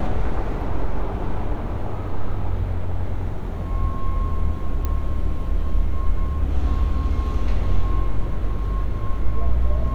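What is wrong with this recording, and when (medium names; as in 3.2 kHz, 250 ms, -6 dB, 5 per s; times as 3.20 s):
4.85 s: pop -12 dBFS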